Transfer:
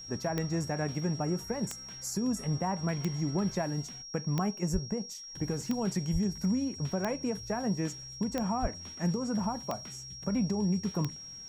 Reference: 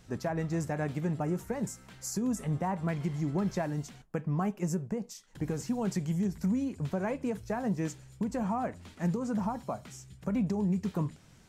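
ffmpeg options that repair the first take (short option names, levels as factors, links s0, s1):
-filter_complex "[0:a]adeclick=t=4,bandreject=f=5600:w=30,asplit=3[s0][s1][s2];[s0]afade=t=out:st=4.72:d=0.02[s3];[s1]highpass=f=140:w=0.5412,highpass=f=140:w=1.3066,afade=t=in:st=4.72:d=0.02,afade=t=out:st=4.84:d=0.02[s4];[s2]afade=t=in:st=4.84:d=0.02[s5];[s3][s4][s5]amix=inputs=3:normalize=0,asplit=3[s6][s7][s8];[s6]afade=t=out:st=6.12:d=0.02[s9];[s7]highpass=f=140:w=0.5412,highpass=f=140:w=1.3066,afade=t=in:st=6.12:d=0.02,afade=t=out:st=6.24:d=0.02[s10];[s8]afade=t=in:st=6.24:d=0.02[s11];[s9][s10][s11]amix=inputs=3:normalize=0,asplit=3[s12][s13][s14];[s12]afade=t=out:st=8.61:d=0.02[s15];[s13]highpass=f=140:w=0.5412,highpass=f=140:w=1.3066,afade=t=in:st=8.61:d=0.02,afade=t=out:st=8.73:d=0.02[s16];[s14]afade=t=in:st=8.73:d=0.02[s17];[s15][s16][s17]amix=inputs=3:normalize=0"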